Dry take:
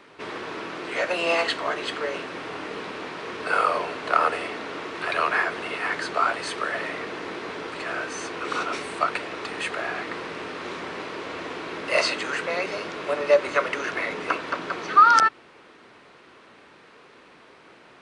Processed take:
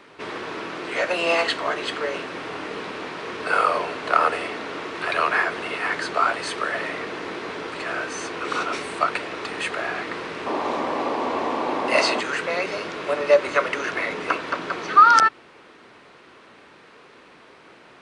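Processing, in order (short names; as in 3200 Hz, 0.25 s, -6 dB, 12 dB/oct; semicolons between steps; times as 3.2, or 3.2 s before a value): painted sound noise, 10.46–12.21, 220–1200 Hz -28 dBFS; gain +2 dB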